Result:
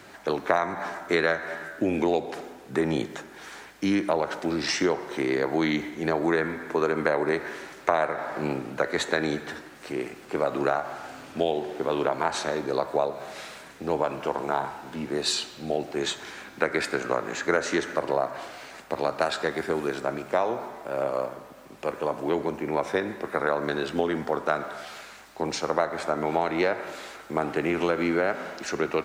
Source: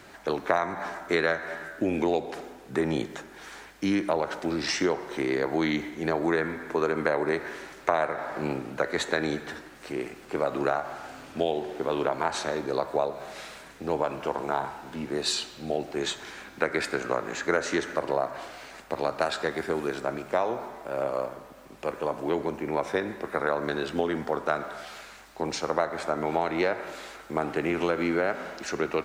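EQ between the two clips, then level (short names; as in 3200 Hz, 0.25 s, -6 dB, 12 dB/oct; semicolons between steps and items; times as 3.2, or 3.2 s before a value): HPF 70 Hz; +1.5 dB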